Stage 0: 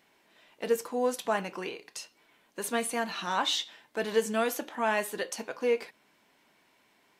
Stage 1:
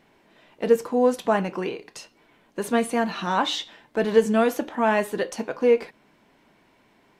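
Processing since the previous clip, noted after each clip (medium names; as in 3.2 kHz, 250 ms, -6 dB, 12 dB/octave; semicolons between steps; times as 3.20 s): tilt EQ -2.5 dB/octave; trim +6 dB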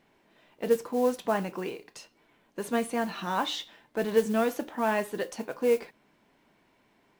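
modulation noise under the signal 23 dB; trim -6 dB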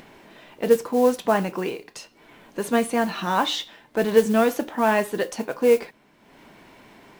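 upward compressor, threshold -46 dBFS; trim +7 dB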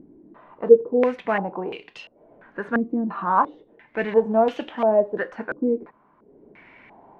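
step-sequenced low-pass 2.9 Hz 310–3000 Hz; trim -4.5 dB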